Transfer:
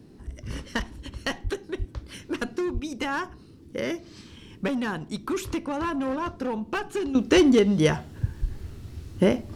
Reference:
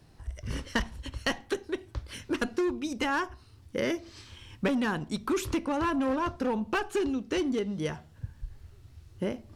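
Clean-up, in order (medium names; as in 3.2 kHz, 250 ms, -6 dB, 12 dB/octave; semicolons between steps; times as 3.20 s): 1.43–1.55 s: high-pass 140 Hz 24 dB/octave; 1.78–1.90 s: high-pass 140 Hz 24 dB/octave; 2.73–2.85 s: high-pass 140 Hz 24 dB/octave; noise print and reduce 6 dB; trim 0 dB, from 7.15 s -11.5 dB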